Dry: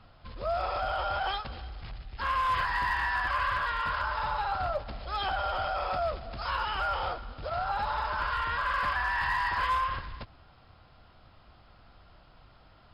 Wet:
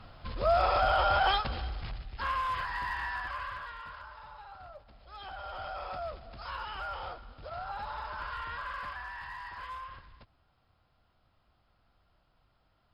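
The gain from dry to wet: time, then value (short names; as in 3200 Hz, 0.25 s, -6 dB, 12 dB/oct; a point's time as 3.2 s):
1.68 s +5 dB
2.57 s -6 dB
3.09 s -6 dB
4.23 s -18 dB
4.89 s -18 dB
5.69 s -8 dB
8.54 s -8 dB
9.28 s -14 dB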